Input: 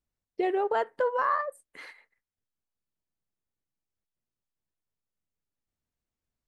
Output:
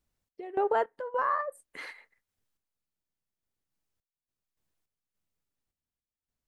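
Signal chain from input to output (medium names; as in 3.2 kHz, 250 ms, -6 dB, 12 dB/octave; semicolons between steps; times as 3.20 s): dynamic bell 4.5 kHz, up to -7 dB, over -47 dBFS, Q 0.77; in parallel at +2.5 dB: compression, threshold -37 dBFS, peak gain reduction 13.5 dB; on the sum: random-step tremolo, depth 90%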